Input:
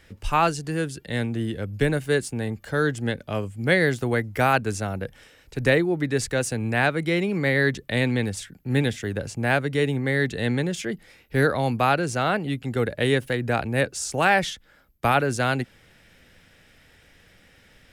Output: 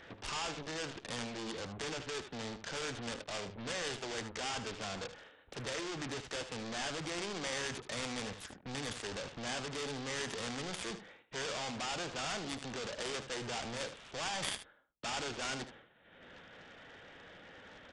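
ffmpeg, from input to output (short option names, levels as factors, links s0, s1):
-filter_complex "[0:a]agate=range=0.0224:threshold=0.00708:ratio=3:detection=peak,equalizer=f=2300:w=1.4:g=-10,acompressor=mode=upward:threshold=0.0178:ratio=2.5,asplit=2[s0][s1];[s1]highpass=f=720:p=1,volume=28.2,asoftclip=type=tanh:threshold=0.376[s2];[s0][s2]amix=inputs=2:normalize=0,lowpass=f=2500:p=1,volume=0.501,aresample=8000,asoftclip=type=hard:threshold=0.0531,aresample=44100,aeval=exprs='0.112*(cos(1*acos(clip(val(0)/0.112,-1,1)))-cos(1*PI/2))+0.0447*(cos(3*acos(clip(val(0)/0.112,-1,1)))-cos(3*PI/2))':c=same,asplit=2[s3][s4];[s4]aecho=0:1:76:0.282[s5];[s3][s5]amix=inputs=2:normalize=0"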